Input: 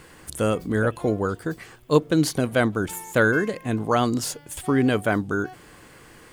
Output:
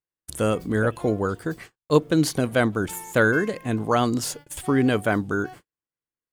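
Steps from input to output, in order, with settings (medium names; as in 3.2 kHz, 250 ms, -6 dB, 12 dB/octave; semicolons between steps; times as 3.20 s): gate -40 dBFS, range -51 dB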